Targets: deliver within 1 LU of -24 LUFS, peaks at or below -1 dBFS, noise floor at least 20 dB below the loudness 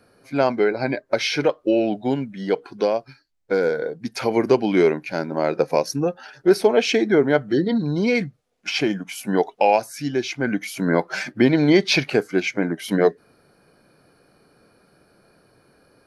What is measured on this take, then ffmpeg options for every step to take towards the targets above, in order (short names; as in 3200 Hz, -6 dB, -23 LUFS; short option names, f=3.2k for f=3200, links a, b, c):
loudness -21.0 LUFS; peak -3.5 dBFS; loudness target -24.0 LUFS
-> -af "volume=-3dB"